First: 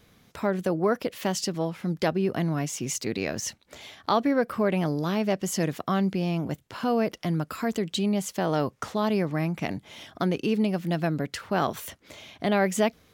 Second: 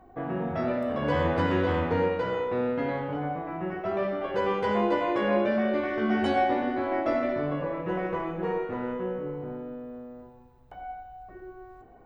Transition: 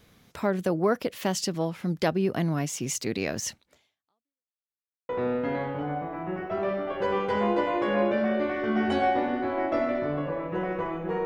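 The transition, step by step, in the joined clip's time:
first
3.59–4.56 fade out exponential
4.56–5.09 mute
5.09 switch to second from 2.43 s

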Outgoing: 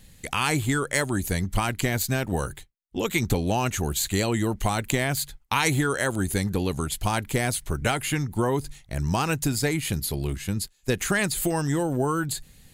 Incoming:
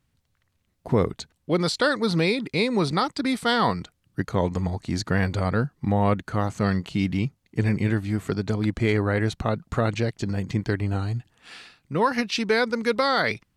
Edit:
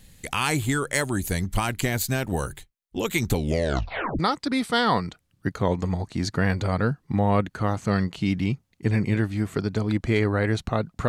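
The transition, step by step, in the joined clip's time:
outgoing
3.35 tape stop 0.84 s
4.19 switch to incoming from 2.92 s

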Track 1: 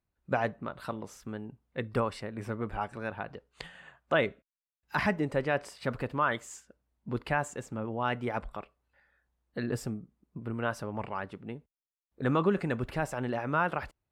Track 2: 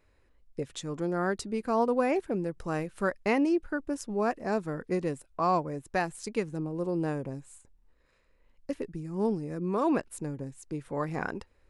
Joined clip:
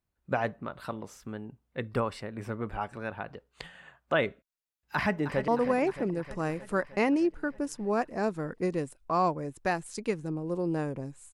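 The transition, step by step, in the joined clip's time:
track 1
4.94–5.48 echo throw 0.31 s, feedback 70%, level -11 dB
5.48 switch to track 2 from 1.77 s

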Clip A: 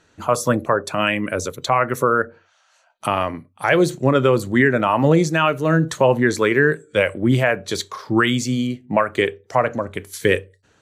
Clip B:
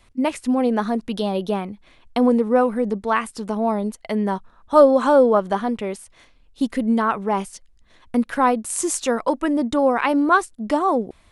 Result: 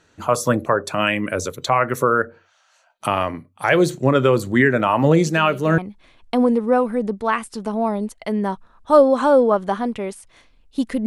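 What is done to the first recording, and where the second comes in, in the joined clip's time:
clip A
5.26 add clip B from 1.09 s 0.52 s -12.5 dB
5.78 switch to clip B from 1.61 s

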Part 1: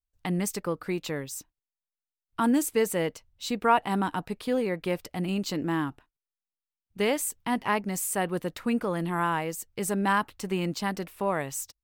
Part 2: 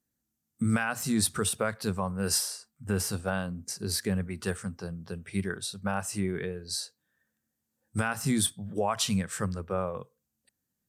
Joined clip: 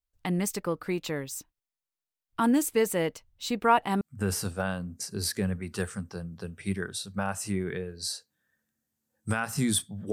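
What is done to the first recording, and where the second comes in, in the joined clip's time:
part 1
4.01 switch to part 2 from 2.69 s

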